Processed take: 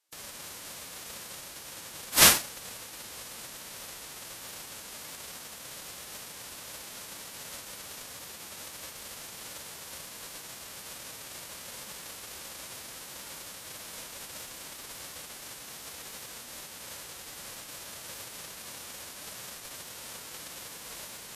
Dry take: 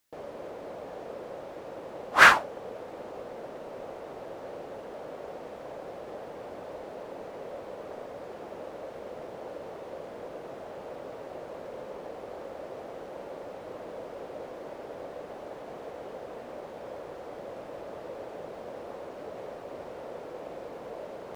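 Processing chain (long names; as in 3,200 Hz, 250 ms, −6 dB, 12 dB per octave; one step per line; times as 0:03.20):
spectral envelope flattened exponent 0.1
level −2 dB
Ogg Vorbis 32 kbit/s 44,100 Hz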